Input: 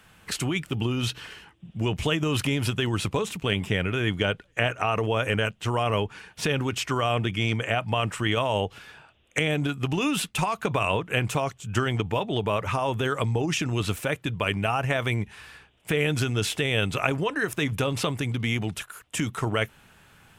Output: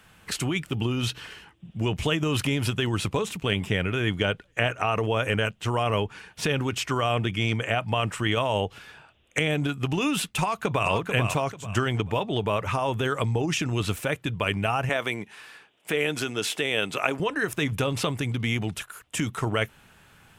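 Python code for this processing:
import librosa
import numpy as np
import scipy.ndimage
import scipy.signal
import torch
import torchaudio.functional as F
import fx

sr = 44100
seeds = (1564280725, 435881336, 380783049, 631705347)

y = fx.echo_throw(x, sr, start_s=10.41, length_s=0.48, ms=440, feedback_pct=30, wet_db=-5.5)
y = fx.highpass(y, sr, hz=250.0, slope=12, at=(14.89, 17.2))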